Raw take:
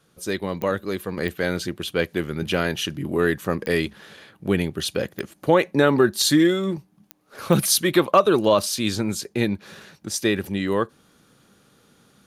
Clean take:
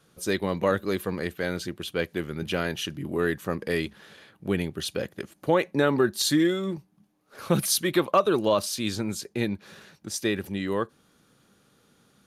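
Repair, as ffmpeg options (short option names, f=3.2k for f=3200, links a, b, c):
-af "adeclick=t=4,asetnsamples=n=441:p=0,asendcmd='1.17 volume volume -5dB',volume=0dB"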